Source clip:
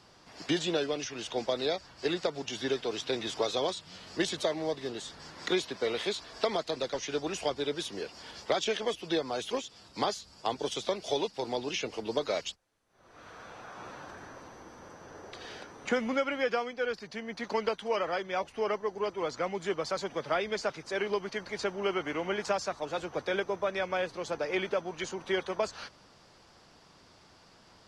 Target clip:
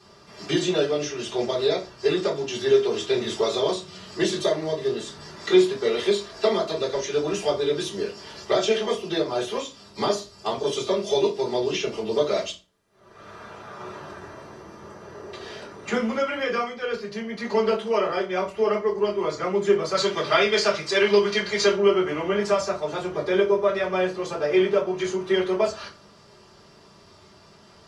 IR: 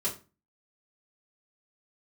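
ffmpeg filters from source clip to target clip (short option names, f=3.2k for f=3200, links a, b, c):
-filter_complex "[0:a]asettb=1/sr,asplit=3[a][b][c];[a]atrim=end=19.944[d];[b]atrim=start=19.94:end=21.76,asetpts=PTS-STARTPTS,afade=t=in:d=0.004:c=qsin,afade=t=out:st=1.816:d=0.004:c=qsin,equalizer=f=3.9k:w=0.41:g=11[e];[c]atrim=start=21.756[f];[d][e]acrossfade=d=0.004:c1=hsin:c2=qsin[g];[g][f]acrossfade=d=0.004:c1=qsin:c2=hsin[h];[1:a]atrim=start_sample=2205[i];[h][i]afir=irnorm=-1:irlink=0,volume=1dB"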